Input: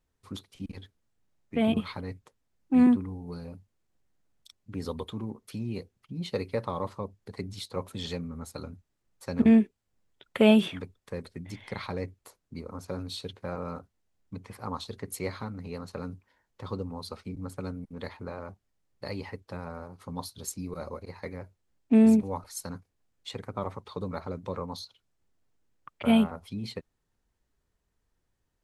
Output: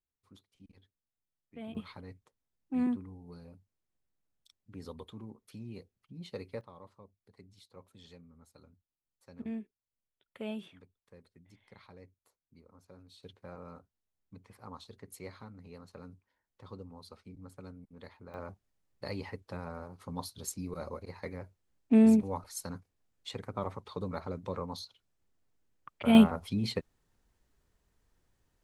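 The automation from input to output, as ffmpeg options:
-af "asetnsamples=n=441:p=0,asendcmd='1.75 volume volume -10.5dB;6.61 volume volume -20dB;13.23 volume volume -12dB;18.34 volume volume -2.5dB;26.15 volume volume 4dB',volume=-19dB"

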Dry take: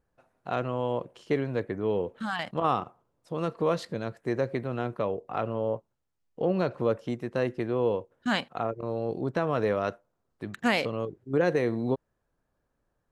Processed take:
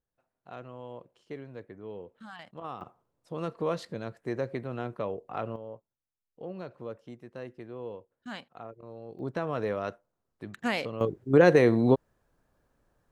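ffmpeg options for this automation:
-af "asetnsamples=n=441:p=0,asendcmd='2.81 volume volume -4dB;5.56 volume volume -13.5dB;9.19 volume volume -4.5dB;11.01 volume volume 6dB',volume=-14dB"

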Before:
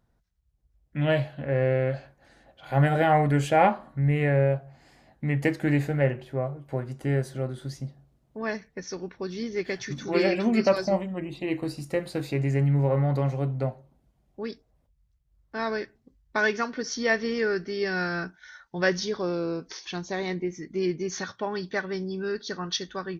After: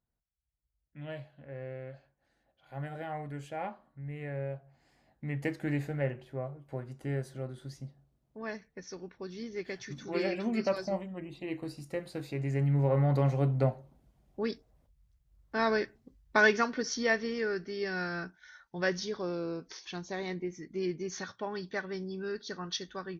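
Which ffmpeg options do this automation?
-af "volume=1dB,afade=t=in:st=4.05:d=1.5:silence=0.334965,afade=t=in:st=12.36:d=1.33:silence=0.334965,afade=t=out:st=16.4:d=0.92:silence=0.421697"

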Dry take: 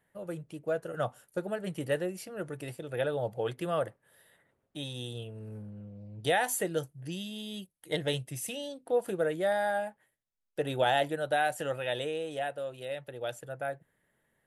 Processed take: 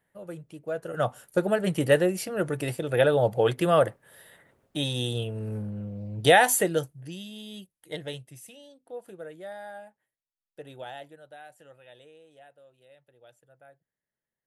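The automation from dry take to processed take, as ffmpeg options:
-af "volume=10dB,afade=t=in:st=0.71:d=0.7:silence=0.281838,afade=t=out:st=6.37:d=0.73:silence=0.266073,afade=t=out:st=7.62:d=0.91:silence=0.316228,afade=t=out:st=10.6:d=0.71:silence=0.421697"

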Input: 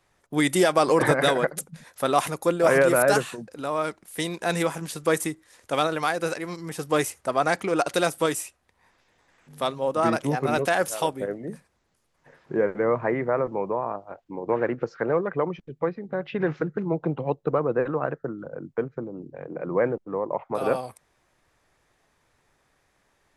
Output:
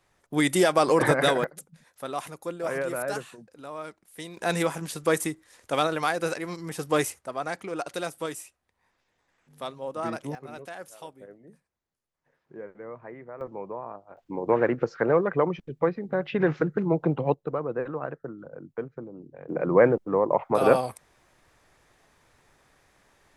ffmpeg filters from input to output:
-af "asetnsamples=n=441:p=0,asendcmd='1.44 volume volume -11dB;4.37 volume volume -1dB;7.19 volume volume -9dB;10.35 volume volume -17.5dB;13.41 volume volume -9dB;14.17 volume volume 2dB;17.34 volume volume -6dB;19.49 volume volume 5dB',volume=-1dB"

